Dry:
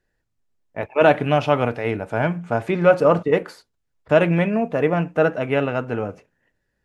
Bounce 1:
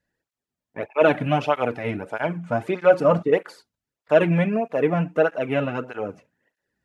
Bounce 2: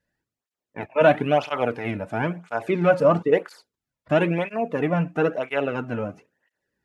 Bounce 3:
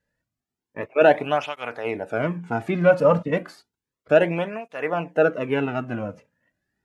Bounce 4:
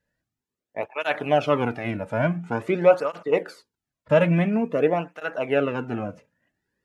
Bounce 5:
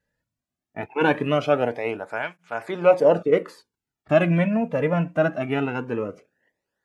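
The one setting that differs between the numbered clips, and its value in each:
tape flanging out of phase, nulls at: 1.6, 1, 0.32, 0.48, 0.21 Hz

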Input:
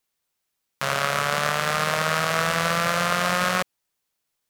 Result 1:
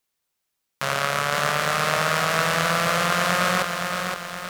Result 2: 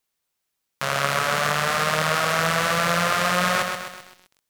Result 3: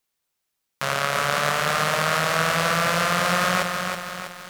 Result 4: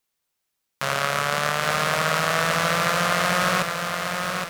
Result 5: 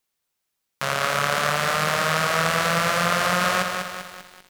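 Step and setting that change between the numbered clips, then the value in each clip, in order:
lo-fi delay, time: 0.518, 0.129, 0.324, 0.817, 0.197 s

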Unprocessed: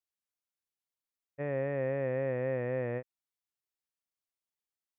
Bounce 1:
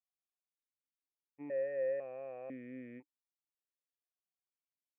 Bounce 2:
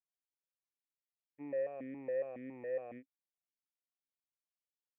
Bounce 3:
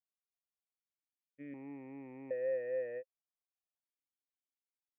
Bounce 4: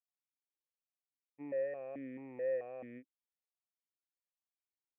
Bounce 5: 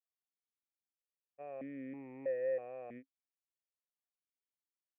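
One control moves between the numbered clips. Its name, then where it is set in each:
vowel sequencer, rate: 2, 7.2, 1.3, 4.6, 3.1 Hz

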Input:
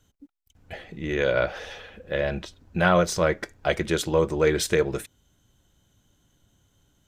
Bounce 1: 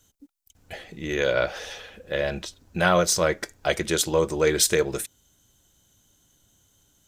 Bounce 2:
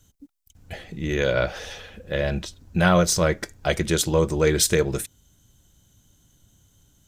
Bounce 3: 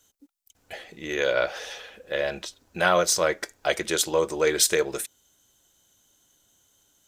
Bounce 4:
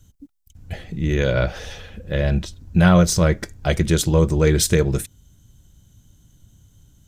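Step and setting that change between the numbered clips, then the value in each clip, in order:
tone controls, bass: -3, +6, -14, +15 dB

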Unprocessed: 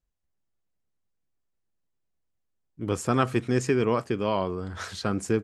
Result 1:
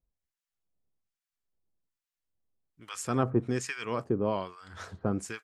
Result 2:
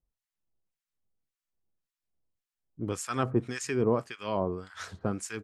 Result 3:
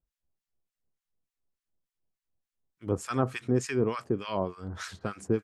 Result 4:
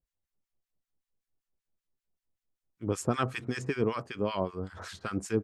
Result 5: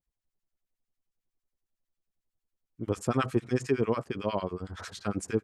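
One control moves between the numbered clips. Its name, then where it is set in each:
harmonic tremolo, rate: 1.2, 1.8, 3.4, 5.2, 11 Hz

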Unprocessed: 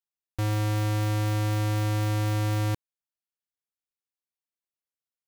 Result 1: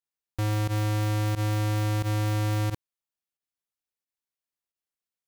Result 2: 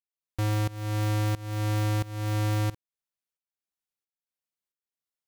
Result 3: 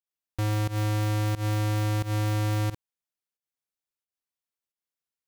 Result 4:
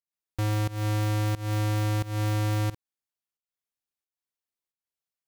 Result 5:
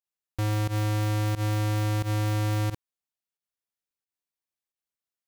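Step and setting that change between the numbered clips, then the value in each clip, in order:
pump, release: 65, 493, 143, 263, 95 ms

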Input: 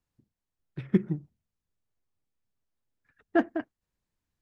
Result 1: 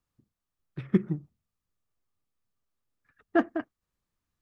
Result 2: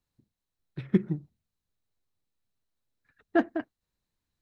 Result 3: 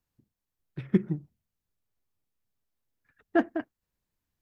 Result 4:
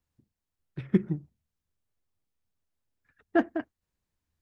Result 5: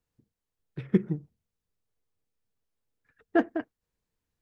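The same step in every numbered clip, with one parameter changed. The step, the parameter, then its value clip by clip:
bell, frequency: 1200, 4000, 13000, 78, 460 Hz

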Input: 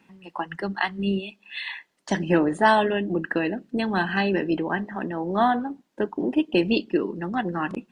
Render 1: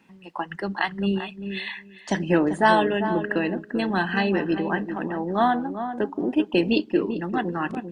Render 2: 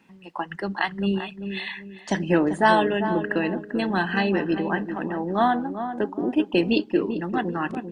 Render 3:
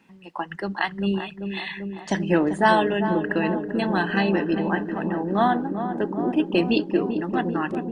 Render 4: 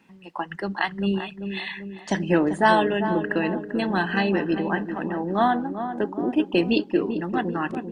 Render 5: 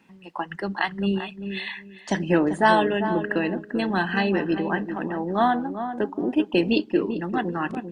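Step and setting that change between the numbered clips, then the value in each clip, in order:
darkening echo, feedback: 15, 35, 85, 57, 22%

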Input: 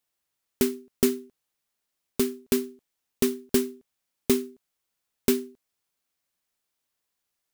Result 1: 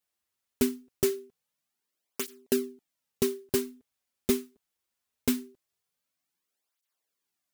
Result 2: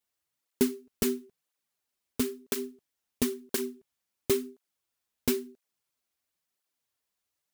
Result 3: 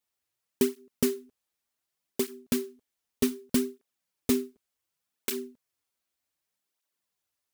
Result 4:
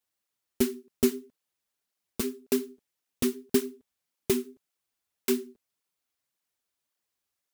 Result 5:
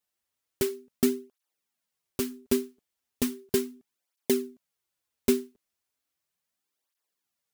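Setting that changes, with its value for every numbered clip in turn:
tape flanging out of phase, nulls at: 0.22, 0.98, 0.66, 1.8, 0.36 Hz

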